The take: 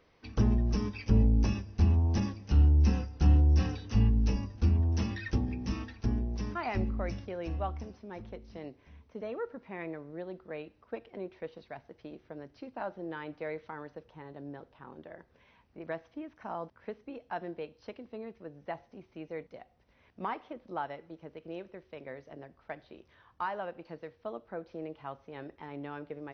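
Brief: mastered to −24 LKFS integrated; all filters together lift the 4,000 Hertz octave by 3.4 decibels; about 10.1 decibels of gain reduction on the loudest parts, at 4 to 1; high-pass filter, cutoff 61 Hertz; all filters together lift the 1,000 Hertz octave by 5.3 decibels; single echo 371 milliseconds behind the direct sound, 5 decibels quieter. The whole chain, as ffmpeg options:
ffmpeg -i in.wav -af "highpass=61,equalizer=frequency=1000:width_type=o:gain=6.5,equalizer=frequency=4000:width_type=o:gain=4.5,acompressor=threshold=-32dB:ratio=4,aecho=1:1:371:0.562,volume=15dB" out.wav

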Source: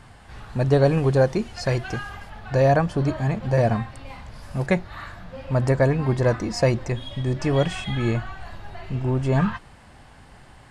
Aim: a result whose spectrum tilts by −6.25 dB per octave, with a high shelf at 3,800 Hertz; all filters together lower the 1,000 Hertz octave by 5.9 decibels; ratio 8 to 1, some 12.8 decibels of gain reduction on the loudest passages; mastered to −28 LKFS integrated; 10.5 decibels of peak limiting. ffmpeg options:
ffmpeg -i in.wav -af "equalizer=frequency=1000:width_type=o:gain=-9,highshelf=frequency=3800:gain=-8,acompressor=threshold=-28dB:ratio=8,volume=10dB,alimiter=limit=-18.5dB:level=0:latency=1" out.wav

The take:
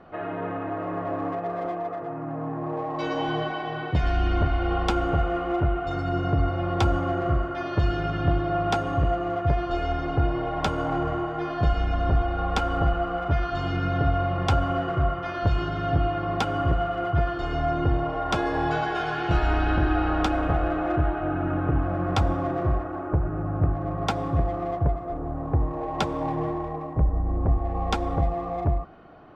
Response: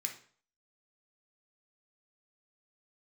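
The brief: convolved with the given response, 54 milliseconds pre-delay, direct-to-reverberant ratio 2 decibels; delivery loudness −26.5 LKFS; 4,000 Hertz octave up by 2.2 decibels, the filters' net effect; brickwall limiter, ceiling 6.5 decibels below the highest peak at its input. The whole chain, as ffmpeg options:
-filter_complex "[0:a]equalizer=frequency=4000:width_type=o:gain=3,alimiter=limit=-17dB:level=0:latency=1,asplit=2[link_01][link_02];[1:a]atrim=start_sample=2205,adelay=54[link_03];[link_02][link_03]afir=irnorm=-1:irlink=0,volume=-2dB[link_04];[link_01][link_04]amix=inputs=2:normalize=0,volume=0.5dB"

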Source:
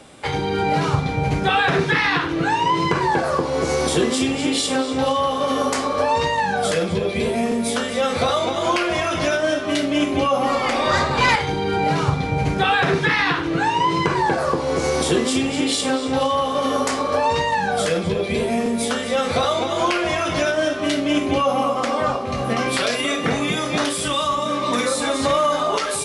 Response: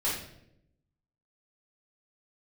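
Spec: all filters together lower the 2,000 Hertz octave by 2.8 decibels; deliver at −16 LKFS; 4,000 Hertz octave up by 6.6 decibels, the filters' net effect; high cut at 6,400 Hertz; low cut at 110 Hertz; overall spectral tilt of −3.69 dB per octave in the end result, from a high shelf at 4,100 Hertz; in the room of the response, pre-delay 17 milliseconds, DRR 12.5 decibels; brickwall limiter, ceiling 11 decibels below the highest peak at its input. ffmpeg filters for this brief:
-filter_complex "[0:a]highpass=110,lowpass=6400,equalizer=frequency=2000:width_type=o:gain=-7,equalizer=frequency=4000:width_type=o:gain=8,highshelf=frequency=4100:gain=5.5,alimiter=limit=-14.5dB:level=0:latency=1,asplit=2[link_01][link_02];[1:a]atrim=start_sample=2205,adelay=17[link_03];[link_02][link_03]afir=irnorm=-1:irlink=0,volume=-20.5dB[link_04];[link_01][link_04]amix=inputs=2:normalize=0,volume=6.5dB"

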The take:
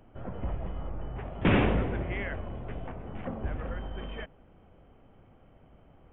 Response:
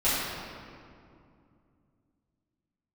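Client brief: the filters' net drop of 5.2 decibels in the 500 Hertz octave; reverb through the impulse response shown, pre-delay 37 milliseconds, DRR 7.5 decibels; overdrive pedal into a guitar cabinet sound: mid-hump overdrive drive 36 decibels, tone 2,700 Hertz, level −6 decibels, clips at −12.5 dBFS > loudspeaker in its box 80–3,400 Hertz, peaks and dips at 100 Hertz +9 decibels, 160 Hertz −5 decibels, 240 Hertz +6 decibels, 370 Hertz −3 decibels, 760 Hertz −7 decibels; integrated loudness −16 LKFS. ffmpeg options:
-filter_complex "[0:a]equalizer=frequency=500:width_type=o:gain=-4.5,asplit=2[link_01][link_02];[1:a]atrim=start_sample=2205,adelay=37[link_03];[link_02][link_03]afir=irnorm=-1:irlink=0,volume=-21.5dB[link_04];[link_01][link_04]amix=inputs=2:normalize=0,asplit=2[link_05][link_06];[link_06]highpass=frequency=720:poles=1,volume=36dB,asoftclip=type=tanh:threshold=-12.5dB[link_07];[link_05][link_07]amix=inputs=2:normalize=0,lowpass=frequency=2700:poles=1,volume=-6dB,highpass=80,equalizer=frequency=100:width_type=q:width=4:gain=9,equalizer=frequency=160:width_type=q:width=4:gain=-5,equalizer=frequency=240:width_type=q:width=4:gain=6,equalizer=frequency=370:width_type=q:width=4:gain=-3,equalizer=frequency=760:width_type=q:width=4:gain=-7,lowpass=frequency=3400:width=0.5412,lowpass=frequency=3400:width=1.3066,volume=6.5dB"

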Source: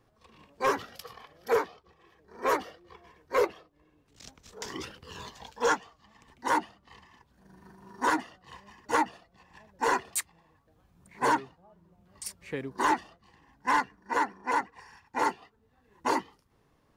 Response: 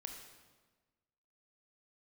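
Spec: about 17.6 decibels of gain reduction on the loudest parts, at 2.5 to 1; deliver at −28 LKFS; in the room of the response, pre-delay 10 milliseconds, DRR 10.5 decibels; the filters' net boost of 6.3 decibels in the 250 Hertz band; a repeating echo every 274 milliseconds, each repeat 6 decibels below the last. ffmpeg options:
-filter_complex "[0:a]equalizer=frequency=250:width_type=o:gain=8,acompressor=threshold=-47dB:ratio=2.5,aecho=1:1:274|548|822|1096|1370|1644:0.501|0.251|0.125|0.0626|0.0313|0.0157,asplit=2[link_01][link_02];[1:a]atrim=start_sample=2205,adelay=10[link_03];[link_02][link_03]afir=irnorm=-1:irlink=0,volume=-7dB[link_04];[link_01][link_04]amix=inputs=2:normalize=0,volume=17dB"

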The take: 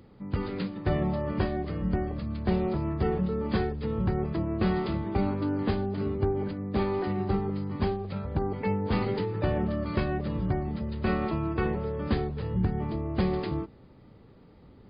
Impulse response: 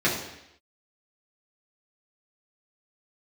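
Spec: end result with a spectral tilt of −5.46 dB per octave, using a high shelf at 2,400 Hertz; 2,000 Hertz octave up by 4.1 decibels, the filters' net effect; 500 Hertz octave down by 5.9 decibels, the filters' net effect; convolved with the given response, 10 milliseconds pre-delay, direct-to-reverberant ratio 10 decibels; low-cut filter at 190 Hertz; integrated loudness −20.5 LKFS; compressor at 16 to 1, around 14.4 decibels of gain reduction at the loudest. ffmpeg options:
-filter_complex "[0:a]highpass=190,equalizer=frequency=500:width_type=o:gain=-8.5,equalizer=frequency=2000:width_type=o:gain=4,highshelf=frequency=2400:gain=3.5,acompressor=threshold=-40dB:ratio=16,asplit=2[link_01][link_02];[1:a]atrim=start_sample=2205,adelay=10[link_03];[link_02][link_03]afir=irnorm=-1:irlink=0,volume=-25dB[link_04];[link_01][link_04]amix=inputs=2:normalize=0,volume=23.5dB"

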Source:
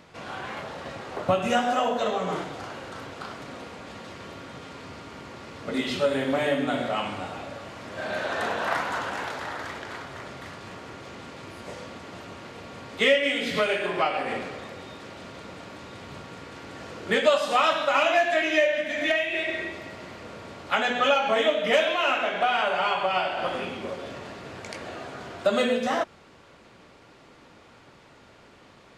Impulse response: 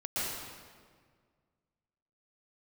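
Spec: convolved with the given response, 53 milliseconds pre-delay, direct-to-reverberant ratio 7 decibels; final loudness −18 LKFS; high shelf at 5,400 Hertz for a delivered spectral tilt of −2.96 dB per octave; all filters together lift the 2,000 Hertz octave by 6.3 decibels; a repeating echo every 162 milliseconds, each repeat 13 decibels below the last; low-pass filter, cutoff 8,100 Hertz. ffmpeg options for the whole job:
-filter_complex "[0:a]lowpass=8100,equalizer=frequency=2000:width_type=o:gain=6.5,highshelf=frequency=5400:gain=9,aecho=1:1:162|324|486:0.224|0.0493|0.0108,asplit=2[link_01][link_02];[1:a]atrim=start_sample=2205,adelay=53[link_03];[link_02][link_03]afir=irnorm=-1:irlink=0,volume=-13.5dB[link_04];[link_01][link_04]amix=inputs=2:normalize=0,volume=3.5dB"

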